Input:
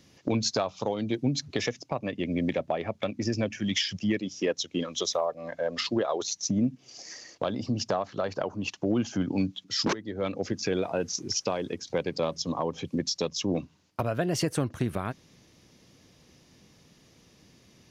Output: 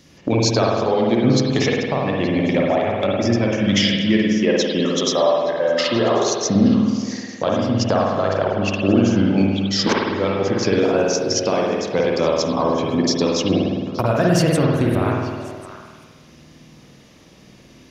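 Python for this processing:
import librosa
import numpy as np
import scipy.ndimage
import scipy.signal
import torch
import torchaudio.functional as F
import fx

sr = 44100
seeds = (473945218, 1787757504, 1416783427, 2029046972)

y = fx.echo_stepped(x, sr, ms=218, hz=190.0, octaves=1.4, feedback_pct=70, wet_db=-6)
y = fx.rev_spring(y, sr, rt60_s=1.4, pass_ms=(51,), chirp_ms=55, drr_db=-2.5)
y = y * librosa.db_to_amplitude(7.0)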